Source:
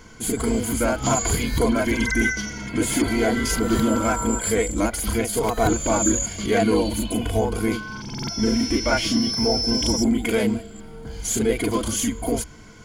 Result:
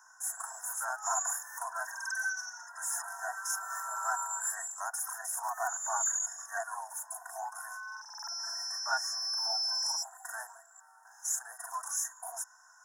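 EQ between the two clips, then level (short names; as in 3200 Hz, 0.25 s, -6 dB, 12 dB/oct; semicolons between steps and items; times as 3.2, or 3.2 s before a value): steep high-pass 740 Hz 72 dB/oct; brick-wall FIR band-stop 1900–5100 Hz; -7.0 dB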